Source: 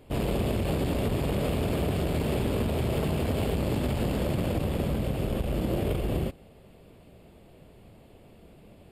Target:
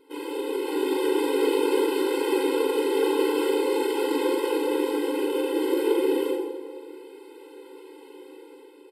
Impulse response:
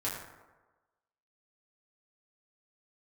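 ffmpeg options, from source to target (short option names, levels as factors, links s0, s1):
-filter_complex "[0:a]bandreject=f=6900:w=8.6,asplit=2[s0][s1];[s1]alimiter=limit=0.0668:level=0:latency=1,volume=0.794[s2];[s0][s2]amix=inputs=2:normalize=0,aecho=1:1:40|86|138.9|199.7|269.7:0.631|0.398|0.251|0.158|0.1,dynaudnorm=f=140:g=11:m=2.82,asplit=2[s3][s4];[1:a]atrim=start_sample=2205,asetrate=25137,aresample=44100[s5];[s4][s5]afir=irnorm=-1:irlink=0,volume=0.376[s6];[s3][s6]amix=inputs=2:normalize=0,afftfilt=real='re*eq(mod(floor(b*sr/1024/270),2),1)':imag='im*eq(mod(floor(b*sr/1024/270),2),1)':win_size=1024:overlap=0.75,volume=0.422"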